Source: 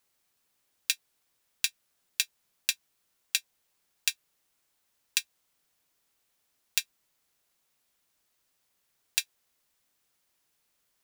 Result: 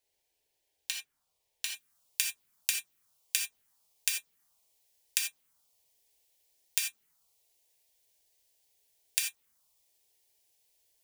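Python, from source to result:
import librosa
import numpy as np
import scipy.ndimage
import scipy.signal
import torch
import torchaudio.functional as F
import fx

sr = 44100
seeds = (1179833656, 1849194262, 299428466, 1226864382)

y = fx.high_shelf(x, sr, hz=4200.0, db=fx.steps((0.0, -7.0), (1.65, 3.0)))
y = fx.env_phaser(y, sr, low_hz=210.0, high_hz=4800.0, full_db=-31.0)
y = fx.rev_gated(y, sr, seeds[0], gate_ms=110, shape='flat', drr_db=1.0)
y = y * librosa.db_to_amplitude(-1.0)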